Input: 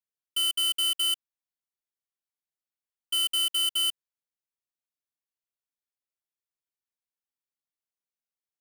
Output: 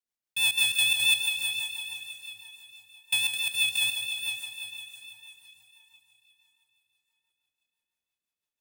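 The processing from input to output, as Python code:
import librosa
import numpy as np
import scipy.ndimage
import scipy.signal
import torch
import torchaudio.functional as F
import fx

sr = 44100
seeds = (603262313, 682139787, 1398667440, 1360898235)

y = fx.over_compress(x, sr, threshold_db=-31.0, ratio=-1.0, at=(3.31, 3.81), fade=0.02)
y = fx.echo_diffused(y, sr, ms=460, feedback_pct=43, wet_db=-7)
y = y * np.sin(2.0 * np.pi * 440.0 * np.arange(len(y)) / sr)
y = fx.rotary(y, sr, hz=6.0)
y = fx.echo_feedback(y, sr, ms=149, feedback_pct=51, wet_db=-9.5)
y = F.gain(torch.from_numpy(y), 6.5).numpy()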